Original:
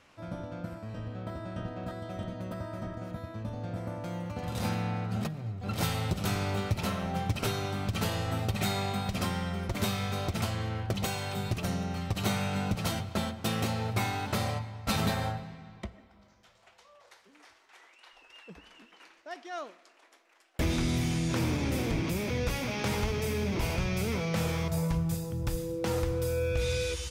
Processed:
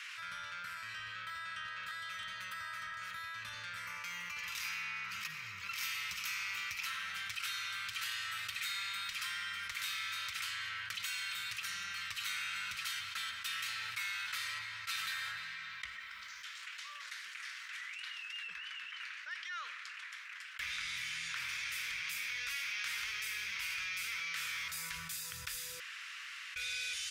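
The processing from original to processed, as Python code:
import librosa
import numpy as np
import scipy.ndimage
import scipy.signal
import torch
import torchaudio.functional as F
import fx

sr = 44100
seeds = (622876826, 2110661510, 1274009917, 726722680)

y = fx.ripple_eq(x, sr, per_octave=0.79, db=7, at=(3.86, 6.86))
y = fx.high_shelf(y, sr, hz=4800.0, db=-9.0, at=(18.47, 21.49))
y = fx.edit(y, sr, fx.room_tone_fill(start_s=25.8, length_s=0.76), tone=tone)
y = scipy.signal.sosfilt(scipy.signal.cheby2(4, 40, 800.0, 'highpass', fs=sr, output='sos'), y)
y = fx.high_shelf(y, sr, hz=2700.0, db=-9.5)
y = fx.env_flatten(y, sr, amount_pct=70)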